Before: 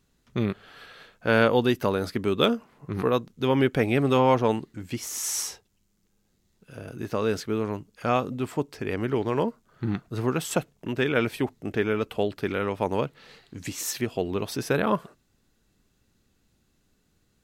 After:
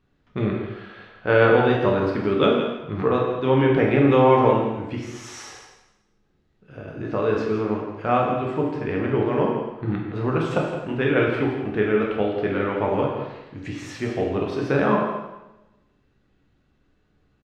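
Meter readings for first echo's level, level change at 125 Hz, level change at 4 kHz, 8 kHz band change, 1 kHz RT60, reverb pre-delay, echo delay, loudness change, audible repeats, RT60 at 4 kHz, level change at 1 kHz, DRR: -9.5 dB, +4.5 dB, -2.0 dB, under -10 dB, 0.95 s, 6 ms, 0.167 s, +4.5 dB, 1, 0.90 s, +5.0 dB, -1.5 dB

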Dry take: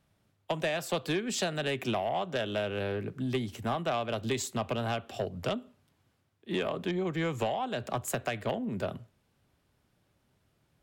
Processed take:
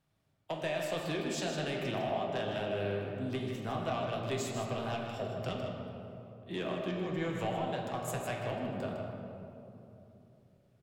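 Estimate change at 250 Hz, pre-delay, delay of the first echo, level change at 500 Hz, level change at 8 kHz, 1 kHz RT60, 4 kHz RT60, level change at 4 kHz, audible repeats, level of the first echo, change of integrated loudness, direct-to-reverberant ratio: -3.0 dB, 6 ms, 0.156 s, -2.5 dB, -6.0 dB, 2.7 s, 1.5 s, -4.5 dB, 1, -8.0 dB, -3.5 dB, -1.5 dB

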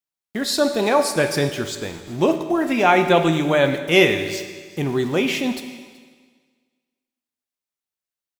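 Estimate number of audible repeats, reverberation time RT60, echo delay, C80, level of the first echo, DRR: 1, 1.6 s, 0.376 s, 10.0 dB, -22.5 dB, 7.0 dB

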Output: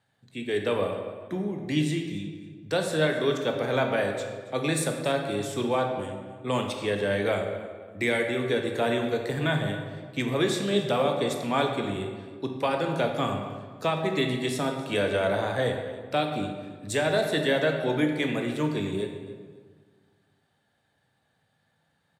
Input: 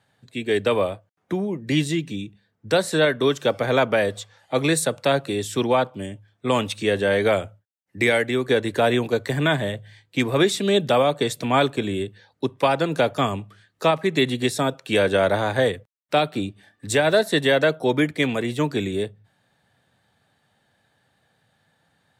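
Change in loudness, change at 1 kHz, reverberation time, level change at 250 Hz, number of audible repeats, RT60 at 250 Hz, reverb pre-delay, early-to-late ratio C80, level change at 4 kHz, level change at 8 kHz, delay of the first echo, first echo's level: -5.5 dB, -5.5 dB, 1.6 s, -4.5 dB, 2, 1.9 s, 15 ms, 6.5 dB, -6.0 dB, -6.5 dB, 0.277 s, -18.0 dB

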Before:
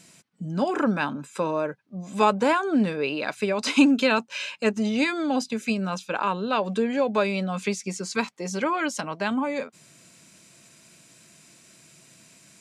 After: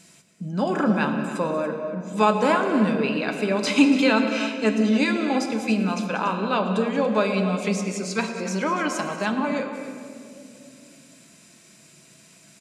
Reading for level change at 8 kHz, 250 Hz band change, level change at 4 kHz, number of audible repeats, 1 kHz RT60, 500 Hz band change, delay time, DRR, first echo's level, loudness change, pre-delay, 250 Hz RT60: +1.0 dB, +3.0 dB, +1.0 dB, 3, 2.1 s, +2.0 dB, 0.113 s, 3.5 dB, -16.5 dB, +2.0 dB, 5 ms, 3.5 s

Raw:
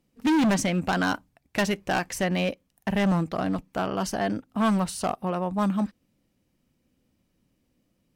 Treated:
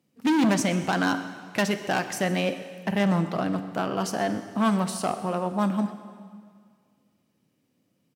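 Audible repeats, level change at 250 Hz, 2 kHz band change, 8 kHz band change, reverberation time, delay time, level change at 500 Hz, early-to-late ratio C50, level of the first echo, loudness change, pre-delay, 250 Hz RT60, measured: 1, 0.0 dB, +0.5 dB, +0.5 dB, 2.0 s, 0.127 s, +0.5 dB, 10.5 dB, -18.0 dB, +0.5 dB, 4 ms, 2.0 s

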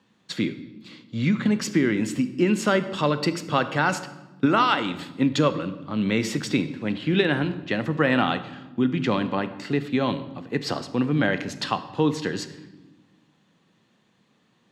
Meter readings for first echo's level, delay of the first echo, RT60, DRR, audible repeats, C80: none, none, 1.1 s, 11.5 dB, none, 15.0 dB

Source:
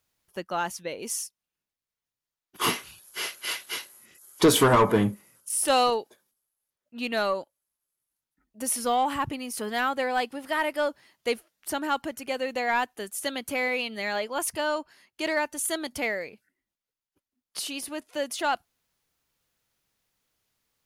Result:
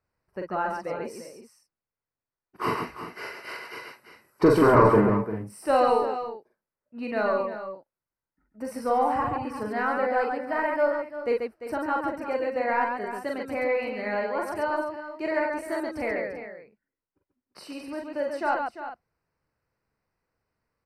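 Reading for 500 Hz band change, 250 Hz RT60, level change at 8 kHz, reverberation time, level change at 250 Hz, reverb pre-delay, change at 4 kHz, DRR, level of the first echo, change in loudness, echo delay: +3.5 dB, none, under -15 dB, none, +2.0 dB, none, -13.5 dB, none, -2.5 dB, +1.0 dB, 42 ms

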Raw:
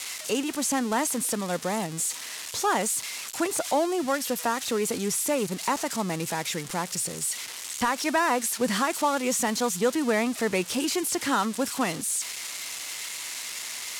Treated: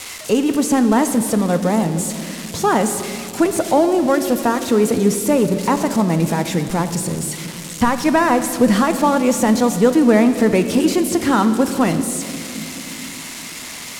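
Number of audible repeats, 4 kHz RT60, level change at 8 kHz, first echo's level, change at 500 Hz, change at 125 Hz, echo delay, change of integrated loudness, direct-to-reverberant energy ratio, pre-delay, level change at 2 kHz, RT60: none, 2.1 s, +2.5 dB, none, +11.0 dB, +15.5 dB, none, +10.0 dB, 8.5 dB, 9 ms, +5.0 dB, 2.9 s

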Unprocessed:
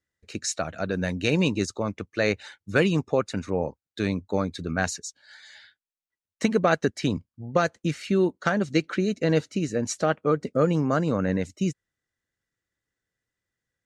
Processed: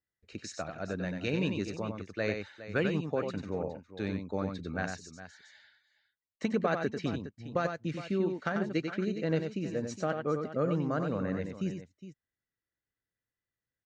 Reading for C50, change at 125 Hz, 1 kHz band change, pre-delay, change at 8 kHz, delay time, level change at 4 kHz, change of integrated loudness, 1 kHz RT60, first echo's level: none, -7.5 dB, -8.0 dB, none, -15.5 dB, 93 ms, -10.5 dB, -7.5 dB, none, -6.0 dB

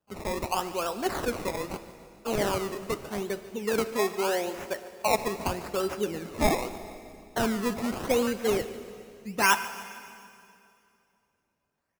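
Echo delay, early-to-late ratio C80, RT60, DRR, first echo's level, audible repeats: 0.144 s, 12.0 dB, 2.6 s, 11.0 dB, -18.0 dB, 4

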